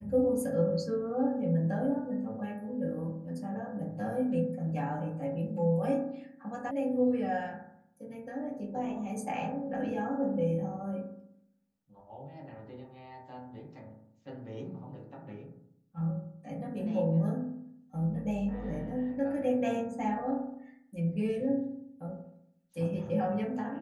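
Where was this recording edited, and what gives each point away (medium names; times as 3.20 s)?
6.71 s: sound stops dead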